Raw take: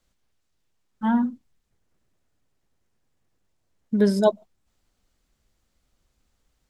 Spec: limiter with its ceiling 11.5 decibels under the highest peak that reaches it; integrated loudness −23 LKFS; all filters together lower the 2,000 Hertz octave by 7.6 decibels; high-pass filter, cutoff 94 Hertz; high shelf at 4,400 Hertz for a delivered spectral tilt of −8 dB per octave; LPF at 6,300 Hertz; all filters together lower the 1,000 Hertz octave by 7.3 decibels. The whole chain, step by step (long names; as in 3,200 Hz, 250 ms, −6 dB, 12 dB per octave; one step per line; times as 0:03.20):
high-pass filter 94 Hz
low-pass filter 6,300 Hz
parametric band 1,000 Hz −7.5 dB
parametric band 2,000 Hz −6 dB
high-shelf EQ 4,400 Hz −6 dB
level +6.5 dB
brickwall limiter −14 dBFS